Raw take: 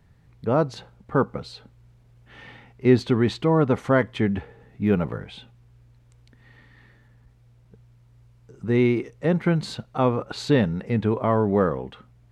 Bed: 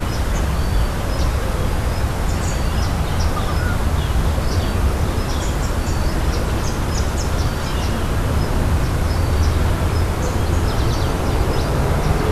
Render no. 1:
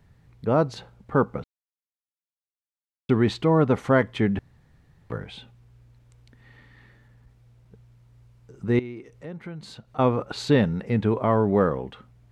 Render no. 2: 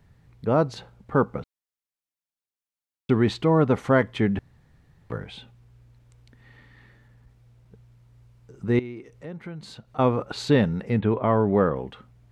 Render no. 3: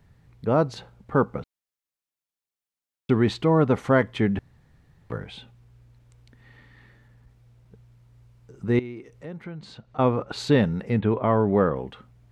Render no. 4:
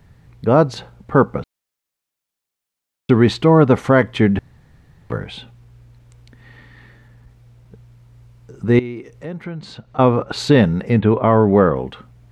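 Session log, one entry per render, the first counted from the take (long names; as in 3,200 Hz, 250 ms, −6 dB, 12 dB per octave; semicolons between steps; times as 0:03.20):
0:01.44–0:03.09: silence; 0:04.39–0:05.10: fill with room tone; 0:08.79–0:09.99: downward compressor 2 to 1, threshold −47 dBFS
0:10.99–0:11.76: Butterworth low-pass 3,800 Hz 48 dB per octave
0:09.44–0:10.32: high-frequency loss of the air 71 metres
level +8 dB; brickwall limiter −2 dBFS, peak gain reduction 2.5 dB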